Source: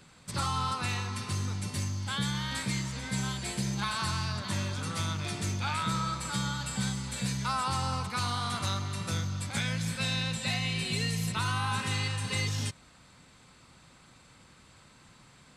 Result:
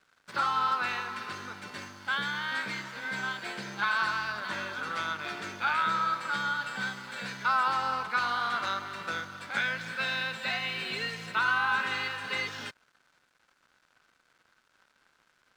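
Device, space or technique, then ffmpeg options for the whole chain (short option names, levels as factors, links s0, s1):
pocket radio on a weak battery: -af "highpass=380,lowpass=3300,aeval=exprs='sgn(val(0))*max(abs(val(0))-0.00119,0)':c=same,equalizer=f=1500:t=o:w=0.37:g=10,volume=1.33"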